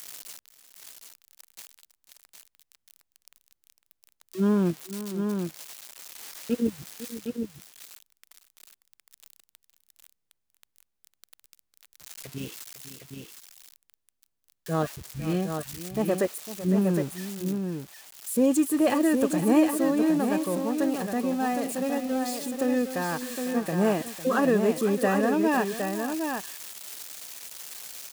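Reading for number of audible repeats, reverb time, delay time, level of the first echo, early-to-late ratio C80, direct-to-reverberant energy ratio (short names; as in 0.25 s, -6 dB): 2, none, 0.503 s, -13.5 dB, none, none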